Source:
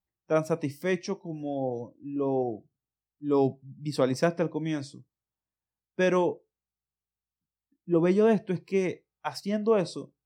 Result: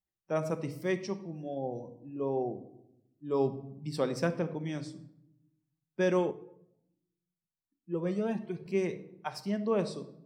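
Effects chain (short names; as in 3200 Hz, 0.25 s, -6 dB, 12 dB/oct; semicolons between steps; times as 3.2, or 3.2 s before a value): shoebox room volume 2200 m³, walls furnished, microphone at 1.1 m; 6.31–8.66 cascading flanger rising 1.4 Hz; gain -5.5 dB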